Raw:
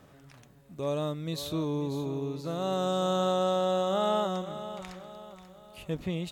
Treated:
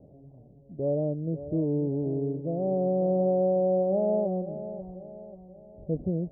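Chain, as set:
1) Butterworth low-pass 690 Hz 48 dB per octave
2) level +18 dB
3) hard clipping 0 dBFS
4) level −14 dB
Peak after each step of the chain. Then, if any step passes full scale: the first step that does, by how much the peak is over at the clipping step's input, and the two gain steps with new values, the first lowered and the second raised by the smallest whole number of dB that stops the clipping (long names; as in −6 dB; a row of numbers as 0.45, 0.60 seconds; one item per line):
−20.5, −2.5, −2.5, −16.5 dBFS
no step passes full scale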